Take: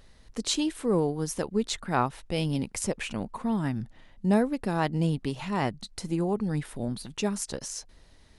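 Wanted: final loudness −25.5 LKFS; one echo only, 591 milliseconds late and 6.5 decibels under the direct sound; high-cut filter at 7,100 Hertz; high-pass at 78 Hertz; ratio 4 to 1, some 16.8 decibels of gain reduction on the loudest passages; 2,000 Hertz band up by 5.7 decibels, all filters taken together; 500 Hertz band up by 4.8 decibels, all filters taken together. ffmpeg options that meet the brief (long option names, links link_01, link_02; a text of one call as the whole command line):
ffmpeg -i in.wav -af "highpass=78,lowpass=7100,equalizer=frequency=500:width_type=o:gain=5.5,equalizer=frequency=2000:width_type=o:gain=7,acompressor=threshold=-38dB:ratio=4,aecho=1:1:591:0.473,volume=14dB" out.wav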